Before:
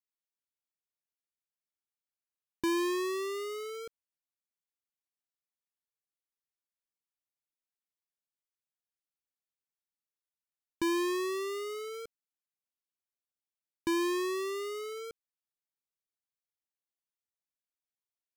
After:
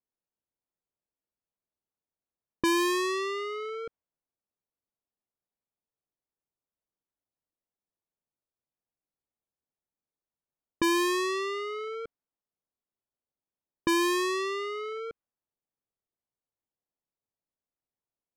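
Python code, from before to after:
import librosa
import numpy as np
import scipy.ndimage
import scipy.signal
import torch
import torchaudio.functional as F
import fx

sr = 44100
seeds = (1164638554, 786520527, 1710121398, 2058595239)

y = fx.dynamic_eq(x, sr, hz=420.0, q=1.3, threshold_db=-44.0, ratio=4.0, max_db=-6)
y = fx.env_lowpass(y, sr, base_hz=790.0, full_db=-31.5)
y = y * librosa.db_to_amplitude(8.0)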